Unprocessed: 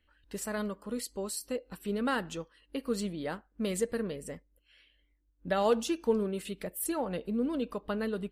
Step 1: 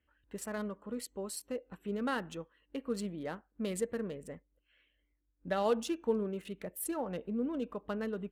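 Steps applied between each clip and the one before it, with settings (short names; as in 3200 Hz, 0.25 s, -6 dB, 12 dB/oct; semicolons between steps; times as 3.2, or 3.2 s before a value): Wiener smoothing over 9 samples; HPF 51 Hz; gain -3.5 dB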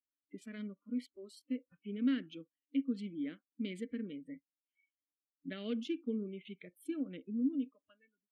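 ending faded out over 1.20 s; spectral noise reduction 27 dB; vowel filter i; gain +9.5 dB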